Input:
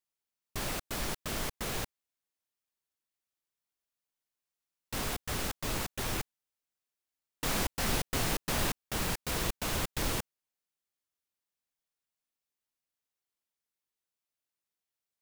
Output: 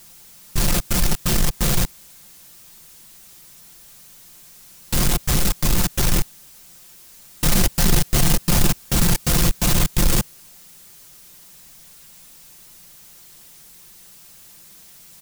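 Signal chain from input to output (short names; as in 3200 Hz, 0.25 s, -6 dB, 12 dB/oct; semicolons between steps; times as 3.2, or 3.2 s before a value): tone controls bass +12 dB, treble +7 dB; comb 5.7 ms, depth 69%; power-law curve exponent 0.5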